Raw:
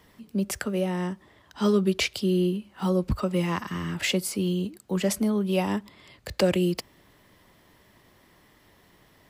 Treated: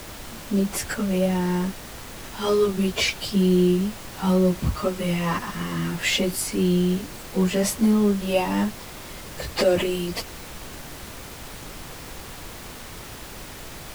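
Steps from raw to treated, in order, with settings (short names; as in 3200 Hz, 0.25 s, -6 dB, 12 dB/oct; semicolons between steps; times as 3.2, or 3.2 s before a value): plain phase-vocoder stretch 1.5×; added noise pink -44 dBFS; gain +6 dB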